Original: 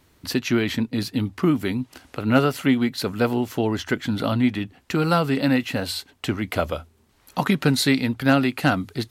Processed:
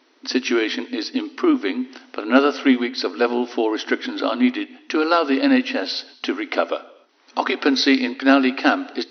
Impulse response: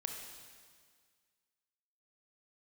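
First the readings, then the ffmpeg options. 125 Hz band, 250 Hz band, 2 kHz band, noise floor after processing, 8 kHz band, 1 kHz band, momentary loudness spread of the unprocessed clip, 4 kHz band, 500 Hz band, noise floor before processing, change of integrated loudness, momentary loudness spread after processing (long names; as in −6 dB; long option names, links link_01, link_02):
below −25 dB, +2.0 dB, +4.0 dB, −55 dBFS, can't be measured, +4.0 dB, 10 LU, +4.0 dB, +4.0 dB, −60 dBFS, +2.5 dB, 10 LU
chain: -filter_complex "[0:a]asplit=2[link_01][link_02];[1:a]atrim=start_sample=2205,afade=type=out:start_time=0.34:duration=0.01,atrim=end_sample=15435[link_03];[link_02][link_03]afir=irnorm=-1:irlink=0,volume=-10.5dB[link_04];[link_01][link_04]amix=inputs=2:normalize=0,afftfilt=real='re*between(b*sr/4096,240,6100)':imag='im*between(b*sr/4096,240,6100)':win_size=4096:overlap=0.75,volume=2dB"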